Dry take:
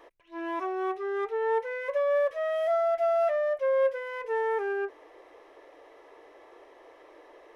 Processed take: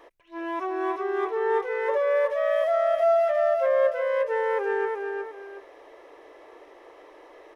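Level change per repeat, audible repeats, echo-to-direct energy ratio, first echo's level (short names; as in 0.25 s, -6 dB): -10.0 dB, 2, -3.0 dB, -3.5 dB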